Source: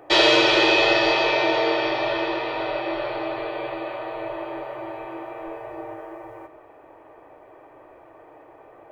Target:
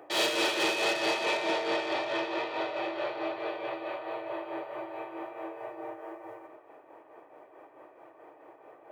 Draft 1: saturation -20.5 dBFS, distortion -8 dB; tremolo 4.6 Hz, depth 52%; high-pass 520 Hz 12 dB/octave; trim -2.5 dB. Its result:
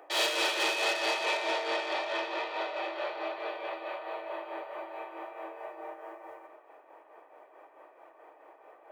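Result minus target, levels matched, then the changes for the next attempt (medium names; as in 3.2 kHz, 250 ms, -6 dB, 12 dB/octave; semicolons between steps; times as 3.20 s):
250 Hz band -7.0 dB
change: high-pass 200 Hz 12 dB/octave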